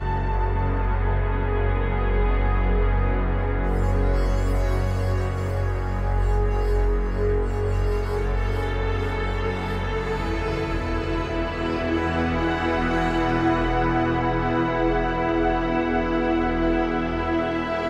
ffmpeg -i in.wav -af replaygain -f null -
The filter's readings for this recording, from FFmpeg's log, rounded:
track_gain = +6.8 dB
track_peak = 0.218